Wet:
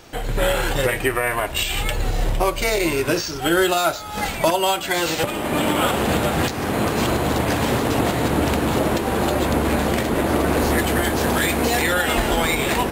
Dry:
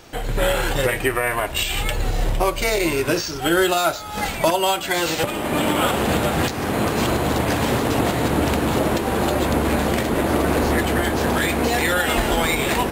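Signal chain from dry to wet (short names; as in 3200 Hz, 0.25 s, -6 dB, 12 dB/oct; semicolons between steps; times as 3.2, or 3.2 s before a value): 10.59–11.82 high shelf 5400 Hz +5 dB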